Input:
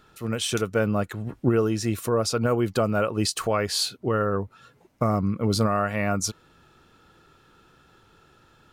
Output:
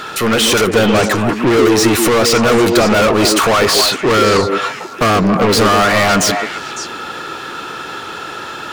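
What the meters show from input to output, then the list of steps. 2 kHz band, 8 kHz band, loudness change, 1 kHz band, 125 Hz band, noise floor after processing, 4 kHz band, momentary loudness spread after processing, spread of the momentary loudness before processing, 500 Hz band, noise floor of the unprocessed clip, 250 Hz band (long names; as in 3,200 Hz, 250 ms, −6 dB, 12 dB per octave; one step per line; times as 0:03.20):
+18.0 dB, +14.0 dB, +13.0 dB, +15.5 dB, +6.5 dB, −28 dBFS, +16.0 dB, 15 LU, 5 LU, +13.0 dB, −59 dBFS, +12.0 dB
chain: mid-hump overdrive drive 36 dB, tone 6,100 Hz, clips at −9 dBFS
echo through a band-pass that steps 139 ms, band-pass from 320 Hz, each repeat 1.4 octaves, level −1 dB
level +3.5 dB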